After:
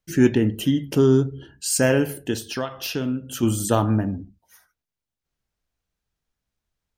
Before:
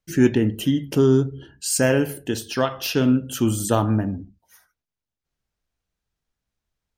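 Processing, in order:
0:02.34–0:03.43: downward compressor 2 to 1, threshold −28 dBFS, peak gain reduction 8 dB

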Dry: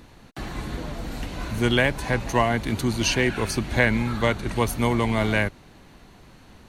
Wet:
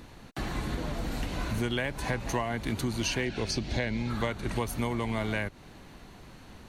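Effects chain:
0:03.25–0:04.10: drawn EQ curve 660 Hz 0 dB, 1,200 Hz −8 dB, 5,100 Hz +6 dB, 11,000 Hz −13 dB
downward compressor 6 to 1, threshold −27 dBFS, peak gain reduction 12 dB

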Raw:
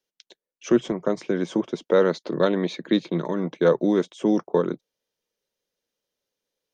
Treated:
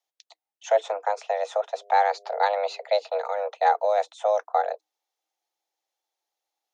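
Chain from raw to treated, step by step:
0:01.75–0:02.84: hum with harmonics 100 Hz, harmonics 4, −52 dBFS 0 dB per octave
frequency shifter +310 Hz
level −2 dB

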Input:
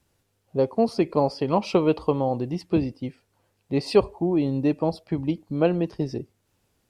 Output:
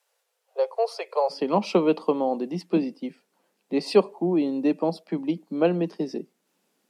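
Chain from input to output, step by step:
Butterworth high-pass 450 Hz 72 dB per octave, from 0:01.29 170 Hz

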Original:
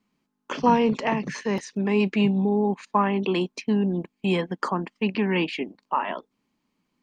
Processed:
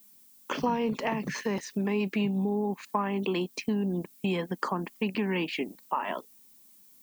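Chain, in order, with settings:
background noise violet −57 dBFS
downward compressor 3 to 1, threshold −27 dBFS, peak gain reduction 10.5 dB

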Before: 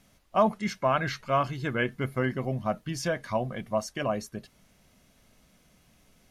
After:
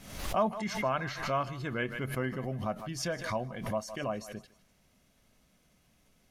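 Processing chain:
on a send: feedback echo with a high-pass in the loop 155 ms, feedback 38%, high-pass 630 Hz, level −16.5 dB
on the sum: background raised ahead of every attack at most 72 dB per second
level −6 dB

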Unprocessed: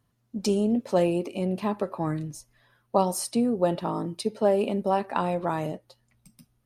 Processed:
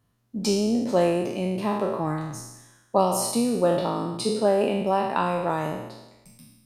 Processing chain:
peak hold with a decay on every bin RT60 1.02 s

